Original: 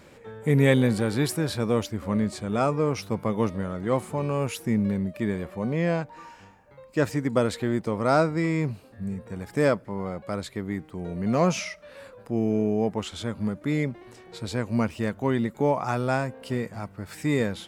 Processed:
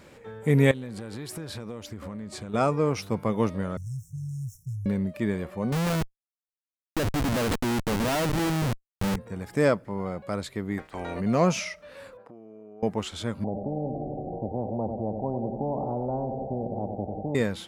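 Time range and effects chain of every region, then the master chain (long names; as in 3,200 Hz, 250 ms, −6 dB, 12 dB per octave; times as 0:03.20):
0:00.71–0:02.54: downward compressor 12 to 1, threshold −32 dBFS + highs frequency-modulated by the lows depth 0.14 ms
0:03.77–0:04.86: running median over 9 samples + linear-phase brick-wall band-stop 150–5,300 Hz + multiband upward and downward compressor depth 70%
0:05.72–0:09.16: parametric band 270 Hz +3.5 dB 0.87 octaves + comparator with hysteresis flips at −29.5 dBFS
0:10.77–0:11.19: ceiling on every frequency bin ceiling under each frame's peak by 27 dB + low-pass filter 2,800 Hz 6 dB per octave
0:12.17–0:12.83: downward compressor 16 to 1, threshold −36 dBFS + resonant band-pass 760 Hz, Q 0.74
0:13.44–0:17.35: Chebyshev low-pass with heavy ripple 800 Hz, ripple 9 dB + repeating echo 93 ms, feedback 55%, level −13 dB + every bin compressed towards the loudest bin 4 to 1
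whole clip: no processing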